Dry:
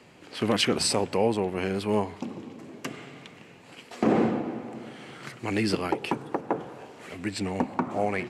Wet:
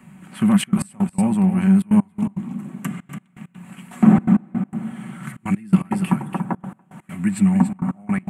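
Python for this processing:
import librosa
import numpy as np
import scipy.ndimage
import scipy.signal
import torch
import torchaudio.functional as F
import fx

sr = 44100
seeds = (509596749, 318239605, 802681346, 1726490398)

p1 = x + 0.39 * np.pad(x, (int(5.3 * sr / 1000.0), 0))[:len(x)]
p2 = fx.rider(p1, sr, range_db=5, speed_s=2.0)
p3 = p1 + F.gain(torch.from_numpy(p2), -1.5).numpy()
p4 = fx.curve_eq(p3, sr, hz=(110.0, 190.0, 450.0, 660.0, 1200.0, 2200.0, 3400.0, 5000.0, 8800.0), db=(0, 11, -19, -8, -2, -6, -12, -21, 6))
p5 = p4 + fx.echo_single(p4, sr, ms=286, db=-9.0, dry=0)
p6 = fx.step_gate(p5, sr, bpm=165, pattern='xxxxxxx.x..x.', floor_db=-24.0, edge_ms=4.5)
y = fx.peak_eq(p6, sr, hz=11000.0, db=-4.0, octaves=0.67)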